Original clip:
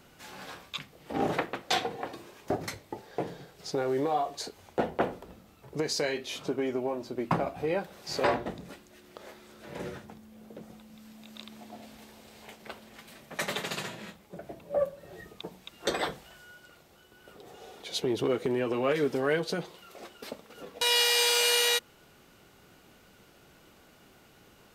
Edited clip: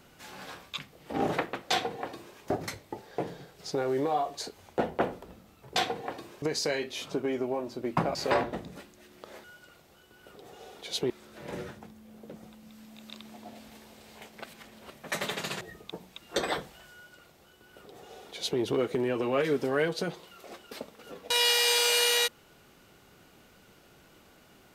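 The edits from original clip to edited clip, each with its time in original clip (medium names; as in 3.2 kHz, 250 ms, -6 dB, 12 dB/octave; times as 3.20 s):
1.71–2.37 s: copy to 5.76 s
7.49–8.08 s: delete
12.71–13.17 s: reverse
13.88–15.12 s: delete
16.45–18.11 s: copy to 9.37 s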